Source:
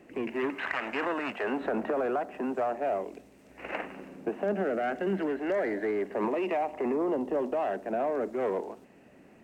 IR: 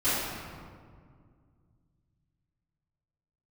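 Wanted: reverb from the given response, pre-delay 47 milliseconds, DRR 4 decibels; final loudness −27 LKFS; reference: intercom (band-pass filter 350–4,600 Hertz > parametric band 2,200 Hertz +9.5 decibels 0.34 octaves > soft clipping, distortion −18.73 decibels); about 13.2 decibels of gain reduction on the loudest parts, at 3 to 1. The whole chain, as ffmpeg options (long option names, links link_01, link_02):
-filter_complex "[0:a]acompressor=threshold=-44dB:ratio=3,asplit=2[link_01][link_02];[1:a]atrim=start_sample=2205,adelay=47[link_03];[link_02][link_03]afir=irnorm=-1:irlink=0,volume=-17dB[link_04];[link_01][link_04]amix=inputs=2:normalize=0,highpass=350,lowpass=4600,equalizer=frequency=2200:width_type=o:width=0.34:gain=9.5,asoftclip=threshold=-34.5dB,volume=16.5dB"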